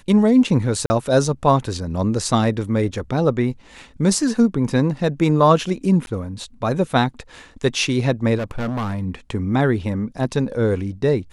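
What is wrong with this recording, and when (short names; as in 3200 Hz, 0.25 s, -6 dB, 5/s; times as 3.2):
0.86–0.9 gap 40 ms
6.06–6.07 gap 11 ms
8.37–9.03 clipped -21 dBFS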